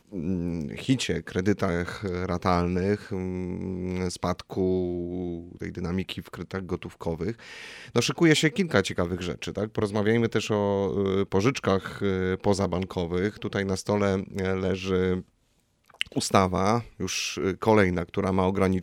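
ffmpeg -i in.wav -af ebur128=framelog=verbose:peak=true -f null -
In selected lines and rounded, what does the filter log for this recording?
Integrated loudness:
  I:         -26.8 LUFS
  Threshold: -37.0 LUFS
Loudness range:
  LRA:         5.6 LU
  Threshold: -47.2 LUFS
  LRA low:   -30.8 LUFS
  LRA high:  -25.2 LUFS
True peak:
  Peak:       -4.8 dBFS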